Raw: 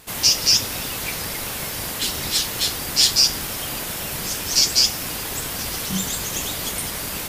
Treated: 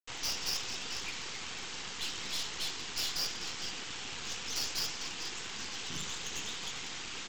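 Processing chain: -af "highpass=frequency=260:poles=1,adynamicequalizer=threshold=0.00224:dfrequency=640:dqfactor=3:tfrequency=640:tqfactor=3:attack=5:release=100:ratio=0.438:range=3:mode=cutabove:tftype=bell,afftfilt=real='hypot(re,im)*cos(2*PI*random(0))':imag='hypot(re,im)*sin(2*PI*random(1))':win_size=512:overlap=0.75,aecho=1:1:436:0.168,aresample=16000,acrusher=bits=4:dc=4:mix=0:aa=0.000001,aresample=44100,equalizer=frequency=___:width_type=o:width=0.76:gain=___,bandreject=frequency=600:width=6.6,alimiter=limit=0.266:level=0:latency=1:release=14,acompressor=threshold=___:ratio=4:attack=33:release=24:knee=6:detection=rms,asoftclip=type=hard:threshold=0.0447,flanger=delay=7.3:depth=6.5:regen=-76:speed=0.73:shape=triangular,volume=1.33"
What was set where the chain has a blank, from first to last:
3000, 4.5, 0.0316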